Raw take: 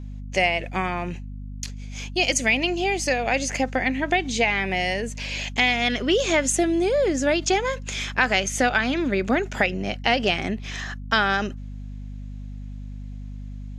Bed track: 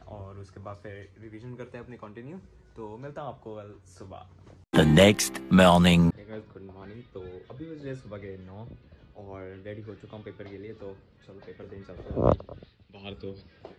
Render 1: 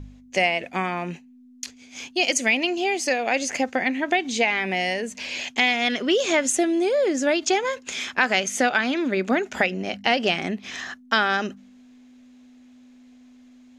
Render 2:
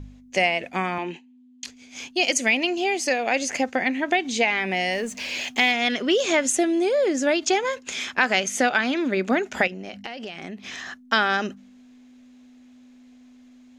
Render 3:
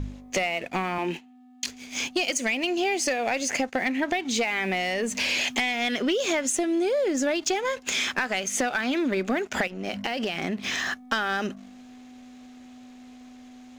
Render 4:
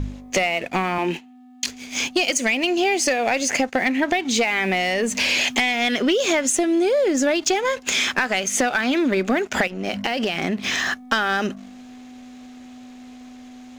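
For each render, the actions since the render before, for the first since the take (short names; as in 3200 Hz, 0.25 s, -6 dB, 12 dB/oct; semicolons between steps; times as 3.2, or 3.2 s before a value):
de-hum 50 Hz, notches 4
0.98–1.65 speaker cabinet 260–7200 Hz, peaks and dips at 340 Hz +6 dB, 610 Hz -8 dB, 920 Hz +7 dB, 1300 Hz -10 dB, 3100 Hz +8 dB, 5600 Hz -8 dB; 4.93–5.72 G.711 law mismatch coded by mu; 9.67–10.99 compressor 8:1, threshold -31 dBFS
compressor 6:1, threshold -30 dBFS, peak gain reduction 15 dB; sample leveller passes 2
gain +5.5 dB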